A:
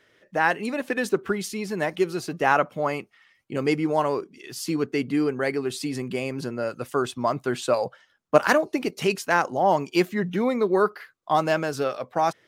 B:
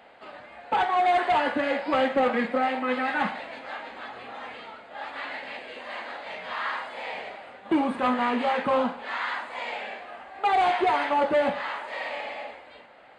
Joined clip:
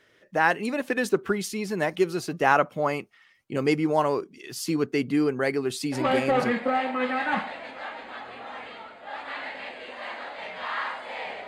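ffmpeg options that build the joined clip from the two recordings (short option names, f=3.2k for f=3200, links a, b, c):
-filter_complex "[0:a]apad=whole_dur=11.47,atrim=end=11.47,atrim=end=6.52,asetpts=PTS-STARTPTS[a];[1:a]atrim=start=1.8:end=7.35,asetpts=PTS-STARTPTS[b];[a][b]acrossfade=d=0.6:c1=log:c2=log"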